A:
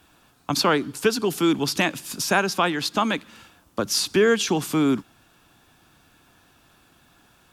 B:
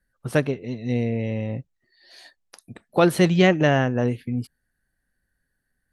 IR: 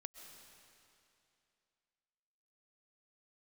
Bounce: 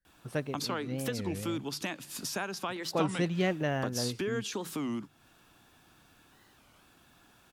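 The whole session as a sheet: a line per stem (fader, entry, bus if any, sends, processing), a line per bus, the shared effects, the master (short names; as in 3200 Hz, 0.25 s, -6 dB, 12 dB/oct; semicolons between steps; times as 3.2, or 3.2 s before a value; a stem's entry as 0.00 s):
-4.0 dB, 0.05 s, no send, notches 50/100/150 Hz; compressor 2.5:1, threshold -33 dBFS, peak gain reduction 12.5 dB
-12.5 dB, 0.00 s, no send, dry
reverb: off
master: record warp 33 1/3 rpm, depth 250 cents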